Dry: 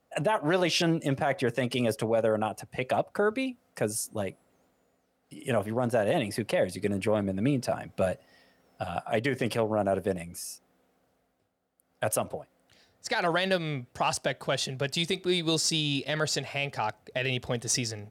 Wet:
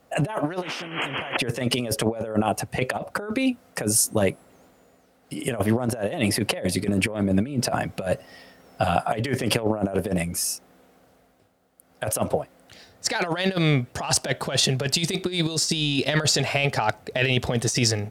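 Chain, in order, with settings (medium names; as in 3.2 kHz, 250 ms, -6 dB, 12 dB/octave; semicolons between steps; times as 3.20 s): painted sound noise, 0.62–1.37 s, 220–3300 Hz -27 dBFS; compressor with a negative ratio -31 dBFS, ratio -0.5; trim +8.5 dB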